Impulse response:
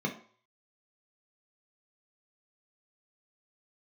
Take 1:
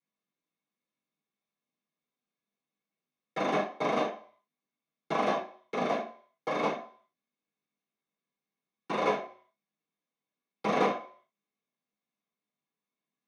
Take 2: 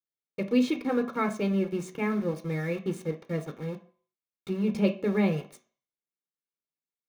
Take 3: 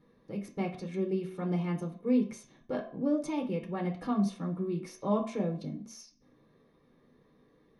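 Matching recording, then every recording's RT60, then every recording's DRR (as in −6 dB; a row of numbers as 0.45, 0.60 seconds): 3; 0.50, 0.50, 0.50 seconds; −9.0, 5.0, 0.5 decibels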